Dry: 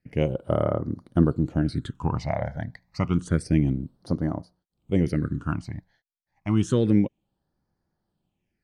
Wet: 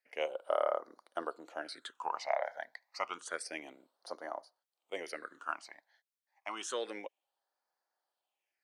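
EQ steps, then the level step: high-pass 610 Hz 24 dB/octave; -2.0 dB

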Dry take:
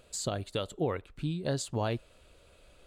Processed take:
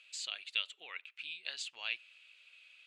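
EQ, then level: ladder band-pass 2.8 kHz, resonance 65%; +12.0 dB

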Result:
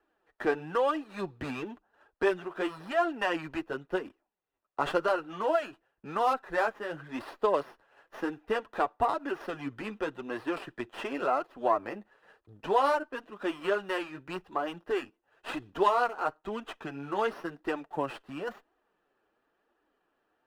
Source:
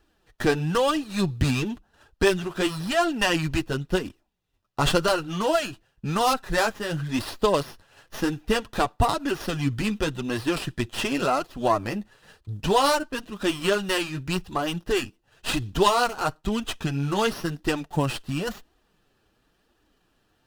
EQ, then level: three-band isolator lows -20 dB, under 300 Hz, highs -18 dB, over 2.2 kHz; -3.5 dB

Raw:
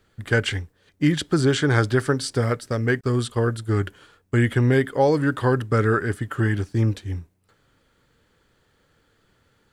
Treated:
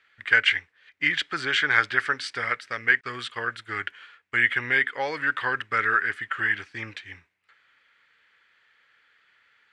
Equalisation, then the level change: resonant low-pass 2.1 kHz, resonance Q 2.3; tilt EQ +3 dB/octave; tilt shelf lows -9 dB; -5.5 dB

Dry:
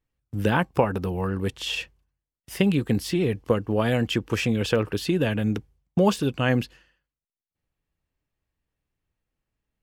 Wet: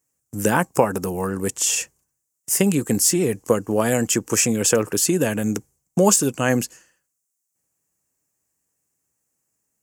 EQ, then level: Bessel high-pass 180 Hz, order 2; resonant high shelf 5.1 kHz +12.5 dB, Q 3; +4.5 dB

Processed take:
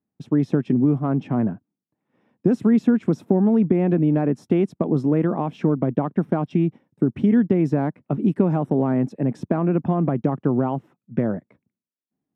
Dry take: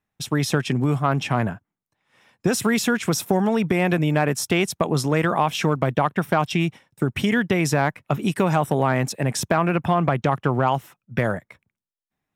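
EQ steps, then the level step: band-pass filter 260 Hz, Q 1.7; +6.5 dB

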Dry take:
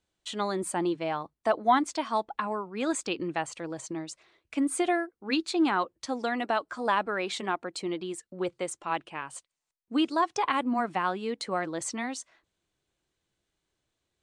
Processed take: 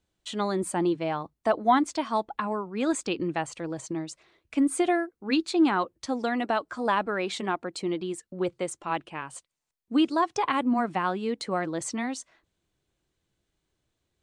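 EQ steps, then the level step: bass shelf 340 Hz +6.5 dB; 0.0 dB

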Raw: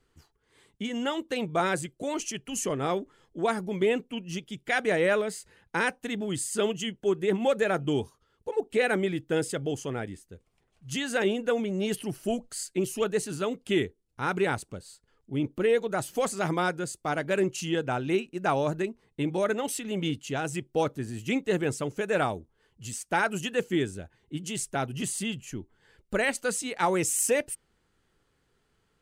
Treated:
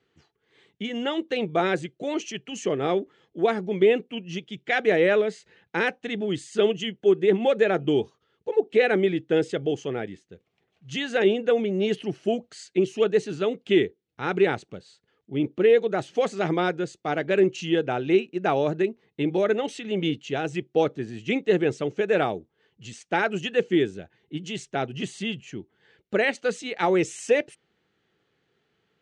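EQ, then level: dynamic bell 390 Hz, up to +4 dB, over -35 dBFS, Q 1.1; cabinet simulation 160–5300 Hz, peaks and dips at 260 Hz -5 dB, 570 Hz -3 dB, 1 kHz -8 dB, 1.4 kHz -4 dB, 4.9 kHz -7 dB; +4.0 dB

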